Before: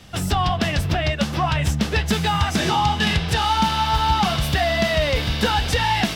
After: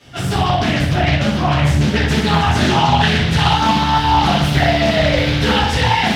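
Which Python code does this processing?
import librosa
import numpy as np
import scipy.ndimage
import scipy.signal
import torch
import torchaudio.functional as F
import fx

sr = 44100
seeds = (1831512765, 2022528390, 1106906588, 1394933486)

y = scipy.signal.sosfilt(scipy.signal.butter(2, 73.0, 'highpass', fs=sr, output='sos'), x)
y = fx.high_shelf(y, sr, hz=8600.0, db=-6.0)
y = fx.room_flutter(y, sr, wall_m=10.5, rt60_s=0.52)
y = fx.room_shoebox(y, sr, seeds[0], volume_m3=81.0, walls='mixed', distance_m=2.5)
y = fx.doppler_dist(y, sr, depth_ms=0.4)
y = F.gain(torch.from_numpy(y), -6.5).numpy()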